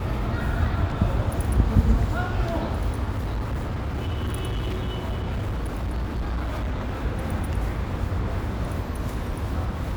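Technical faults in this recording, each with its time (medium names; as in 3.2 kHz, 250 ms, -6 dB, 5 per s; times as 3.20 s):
3.15–7.04 s: clipped -23.5 dBFS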